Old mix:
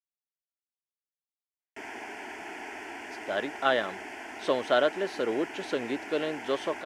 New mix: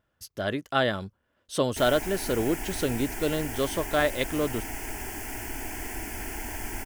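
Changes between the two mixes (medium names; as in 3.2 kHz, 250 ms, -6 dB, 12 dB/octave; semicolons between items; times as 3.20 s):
speech: entry -2.90 s; master: remove band-pass 350–3500 Hz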